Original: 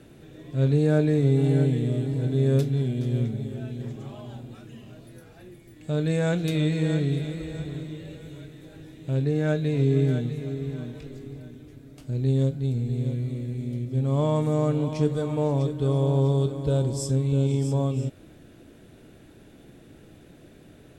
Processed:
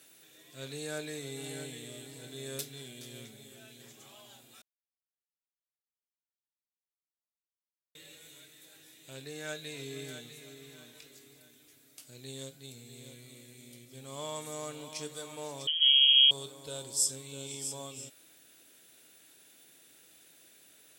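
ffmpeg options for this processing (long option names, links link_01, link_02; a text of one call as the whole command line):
ffmpeg -i in.wav -filter_complex "[0:a]asettb=1/sr,asplit=3[link_01][link_02][link_03];[link_01]atrim=end=15.674[link_04];[link_02]atrim=start=15.67:end=16.31,asetpts=PTS-STARTPTS,afade=type=in:duration=0.004:curve=qsin,afade=type=out:start_time=0.636:duration=0.004:curve=qsin,lowpass=frequency=2900:width_type=q:width=0.5098,lowpass=frequency=2900:width_type=q:width=0.6013,lowpass=frequency=2900:width_type=q:width=0.9,lowpass=frequency=2900:width_type=q:width=2.563,afreqshift=-3400[link_05];[link_03]atrim=start=16.306[link_06];[link_04][link_05]acrossfade=duration=0.004:curve1=hsin:curve2=qsin[link_07];[link_07][link_06]acrossfade=duration=0.004:curve1=qsin:curve2=hsin,asplit=3[link_08][link_09][link_10];[link_08]atrim=end=4.62,asetpts=PTS-STARTPTS,afade=type=out:start_time=4.616:duration=0.004:curve=hsin[link_11];[link_09]atrim=start=4.62:end=7.95,asetpts=PTS-STARTPTS,volume=0[link_12];[link_10]atrim=start=7.95,asetpts=PTS-STARTPTS,afade=type=in:duration=0.004:curve=hsin[link_13];[link_11][link_12][link_13]concat=n=3:v=0:a=1,aderivative,volume=7dB" out.wav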